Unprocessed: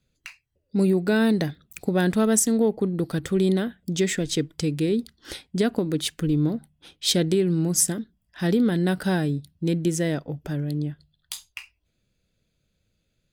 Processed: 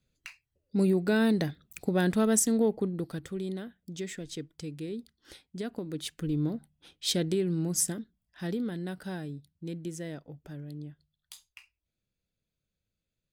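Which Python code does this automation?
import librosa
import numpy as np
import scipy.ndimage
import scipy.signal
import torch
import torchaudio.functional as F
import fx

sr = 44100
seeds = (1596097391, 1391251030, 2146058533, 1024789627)

y = fx.gain(x, sr, db=fx.line((2.74, -4.5), (3.42, -14.0), (5.6, -14.0), (6.4, -7.0), (7.93, -7.0), (8.91, -14.0)))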